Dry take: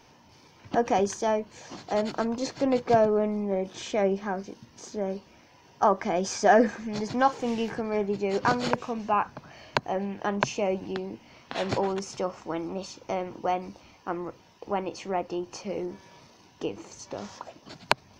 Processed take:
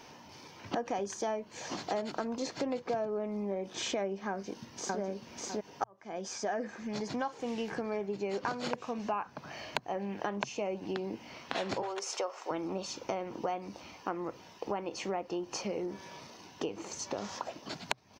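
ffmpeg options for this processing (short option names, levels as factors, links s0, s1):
-filter_complex "[0:a]asplit=2[s0][s1];[s1]afade=t=in:st=4.29:d=0.01,afade=t=out:st=5:d=0.01,aecho=0:1:600|1200|1800:0.841395|0.126209|0.0189314[s2];[s0][s2]amix=inputs=2:normalize=0,asettb=1/sr,asplit=3[s3][s4][s5];[s3]atrim=end=11.824[s6];[s4]atrim=start=11.82:end=12.51,asetpts=PTS-STARTPTS,afade=t=in:d=0.004:c=qsin,afade=t=out:st=0.686:d=0.004:c=qsin,highpass=f=430:w=0.5412,highpass=f=430:w=1.3066[s7];[s5]atrim=start=12.506[s8];[s6][s7]acrossfade=d=0.004:c1=hsin:c2=qsin[s9];[s9][s8]acrossfade=d=0.004:c1=qsin:c2=hsin,asplit=2[s10][s11];[s10]atrim=end=5.84,asetpts=PTS-STARTPTS,afade=t=out:st=5.836:d=0.004:c=hsin[s12];[s11]atrim=start=5.84,asetpts=PTS-STARTPTS,afade=t=in:d=3.16:c=qsin[s13];[s12][s13]concat=n=2:v=0:a=1,acompressor=threshold=0.0158:ratio=6,lowshelf=f=96:g=-11,bandreject=f=60:t=h:w=6,bandreject=f=120:t=h:w=6,volume=1.68"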